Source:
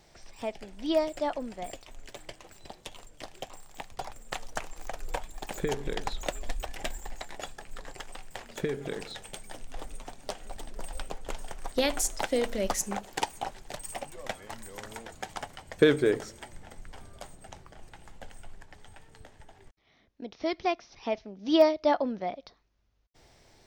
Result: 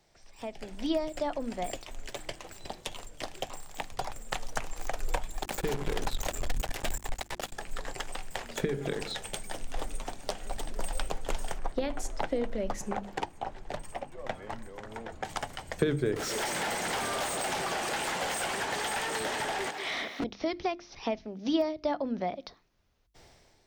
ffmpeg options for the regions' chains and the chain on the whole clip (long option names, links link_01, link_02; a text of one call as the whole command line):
ffmpeg -i in.wav -filter_complex "[0:a]asettb=1/sr,asplit=3[link_01][link_02][link_03];[link_01]atrim=end=5.434[link_04];[link_02]atrim=start=5.43:end=7.53,asetpts=PTS-STARTPTS,afade=type=in:duration=0.004:curve=qsin,afade=type=out:start_time=2.096:duration=0.004:curve=qsin,aeval=exprs='(tanh(25.1*val(0)+0.35)-tanh(0.35))/25.1':channel_layout=same,acrusher=bits=5:mix=0:aa=0.5[link_05];[link_03]atrim=start=7.526[link_06];[link_04][link_05]acrossfade=duration=0.004:curve1=hsin:curve2=qsin[link_07];[link_07][link_06]acrossfade=duration=0.004:curve1=qsin:curve2=hsin,asettb=1/sr,asplit=3[link_08][link_09][link_10];[link_08]atrim=end=11.584[link_11];[link_09]atrim=start=11.58:end=15.25,asetpts=PTS-STARTPTS,afade=type=in:duration=0.004:curve=qsin,afade=type=out:start_time=3.666:duration=0.004:curve=qsin,lowpass=frequency=1400:poles=1,tremolo=f=1.4:d=0.43[link_12];[link_10]atrim=start=15.246[link_13];[link_11][link_12]acrossfade=duration=0.004:curve1=hsin:curve2=qsin[link_14];[link_14][link_13]acrossfade=duration=0.004:curve1=qsin:curve2=hsin,asettb=1/sr,asplit=3[link_15][link_16][link_17];[link_15]atrim=end=16.164[link_18];[link_16]atrim=start=16.16:end=20.24,asetpts=PTS-STARTPTS,afade=type=in:duration=0.004:curve=qsin,afade=type=out:start_time=4.076:duration=0.004:curve=qsin,highpass=200,aecho=1:1:191:0.211,atrim=end_sample=179928,asplit=2[link_19][link_20];[link_20]highpass=frequency=720:poles=1,volume=38dB,asoftclip=type=tanh:threshold=-26dB[link_21];[link_19][link_21]amix=inputs=2:normalize=0,lowpass=frequency=5400:poles=1,volume=-6dB[link_22];[link_17]atrim=start=20.236[link_23];[link_18][link_22]acrossfade=duration=0.004:curve1=hsin:curve2=qsin[link_24];[link_24][link_23]acrossfade=duration=0.004:curve1=qsin:curve2=hsin,acrossover=split=200[link_25][link_26];[link_26]acompressor=threshold=-35dB:ratio=4[link_27];[link_25][link_27]amix=inputs=2:normalize=0,bandreject=frequency=50:width_type=h:width=6,bandreject=frequency=100:width_type=h:width=6,bandreject=frequency=150:width_type=h:width=6,bandreject=frequency=200:width_type=h:width=6,bandreject=frequency=250:width_type=h:width=6,bandreject=frequency=300:width_type=h:width=6,bandreject=frequency=350:width_type=h:width=6,dynaudnorm=framelen=150:gausssize=7:maxgain=13dB,volume=-7.5dB" out.wav